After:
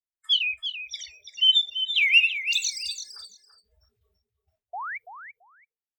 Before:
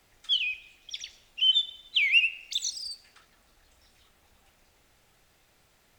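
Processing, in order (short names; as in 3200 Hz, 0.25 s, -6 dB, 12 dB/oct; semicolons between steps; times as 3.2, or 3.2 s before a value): painted sound rise, 4.73–4.98, 660–2400 Hz -37 dBFS; gate with hold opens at -51 dBFS; spectral noise reduction 30 dB; on a send: feedback echo 0.335 s, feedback 17%, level -9.5 dB; on the sum: gain +4 dB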